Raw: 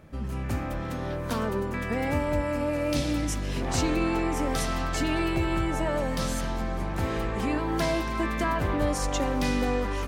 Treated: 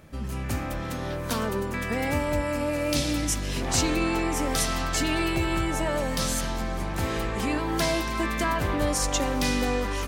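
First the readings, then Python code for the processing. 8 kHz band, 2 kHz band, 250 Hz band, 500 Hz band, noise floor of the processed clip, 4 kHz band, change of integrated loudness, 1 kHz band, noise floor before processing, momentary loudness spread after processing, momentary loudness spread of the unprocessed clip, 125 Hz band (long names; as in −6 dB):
+7.5 dB, +3.0 dB, 0.0 dB, +0.5 dB, −32 dBFS, +5.5 dB, +1.5 dB, +1.0 dB, −32 dBFS, 6 LU, 5 LU, 0.0 dB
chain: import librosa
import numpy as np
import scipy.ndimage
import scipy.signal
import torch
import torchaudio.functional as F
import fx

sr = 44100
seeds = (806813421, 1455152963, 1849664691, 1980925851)

y = fx.high_shelf(x, sr, hz=2800.0, db=8.5)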